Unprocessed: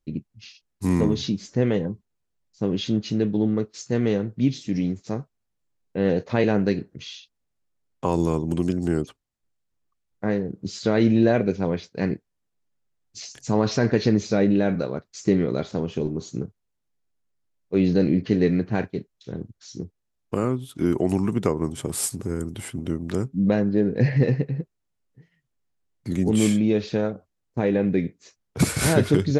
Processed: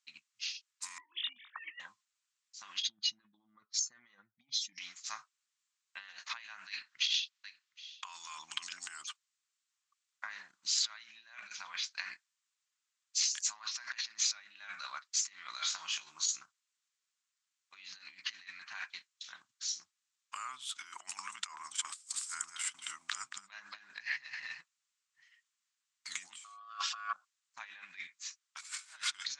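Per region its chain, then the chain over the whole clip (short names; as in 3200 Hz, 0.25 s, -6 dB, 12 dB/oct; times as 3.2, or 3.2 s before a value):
0.98–1.8 sine-wave speech + doubler 20 ms -5.5 dB
2.82–4.78 spectral contrast raised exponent 1.7 + notch 2700 Hz, Q 8
6.67–8.79 LPF 4000 Hz + high shelf 2400 Hz +10.5 dB + echo 0.767 s -22 dB
15.53–16.36 HPF 50 Hz + high shelf 5200 Hz +7 dB + doubler 19 ms -4.5 dB
21.56–24.6 gate -36 dBFS, range -13 dB + echo 0.227 s -9 dB
26.44–27.13 tone controls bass +3 dB, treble -2 dB + comb 3.9 ms, depth 54% + ring modulator 920 Hz
whole clip: tilt +3 dB/oct; negative-ratio compressor -30 dBFS, ratio -0.5; elliptic band-pass 1100–7700 Hz, stop band 40 dB; gain -3.5 dB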